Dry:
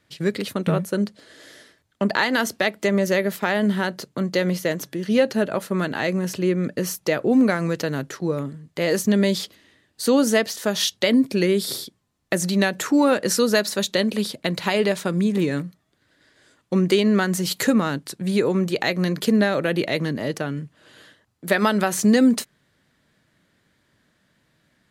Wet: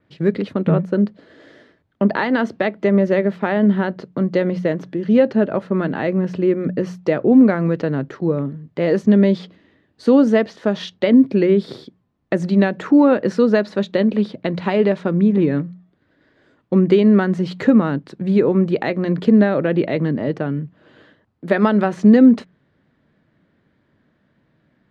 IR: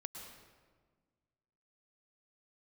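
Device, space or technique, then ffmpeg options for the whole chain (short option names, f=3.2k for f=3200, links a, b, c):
phone in a pocket: -af "lowpass=3.9k,equalizer=f=230:t=o:w=2.4:g=4,highshelf=f=2.1k:g=-10.5,bandreject=f=60:t=h:w=6,bandreject=f=120:t=h:w=6,bandreject=f=180:t=h:w=6,adynamicequalizer=threshold=0.00501:dfrequency=4900:dqfactor=0.7:tfrequency=4900:tqfactor=0.7:attack=5:release=100:ratio=0.375:range=3:mode=cutabove:tftype=highshelf,volume=2.5dB"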